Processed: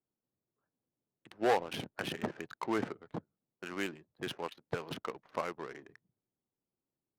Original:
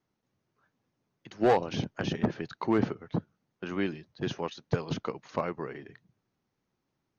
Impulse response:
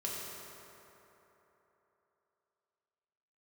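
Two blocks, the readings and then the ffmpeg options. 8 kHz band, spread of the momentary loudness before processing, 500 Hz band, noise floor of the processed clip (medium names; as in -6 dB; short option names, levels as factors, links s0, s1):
no reading, 11 LU, -6.0 dB, under -85 dBFS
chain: -af "crystalizer=i=6:c=0,bass=f=250:g=-8,treble=f=4000:g=-10,adynamicsmooth=sensitivity=7.5:basefreq=570,volume=0.501"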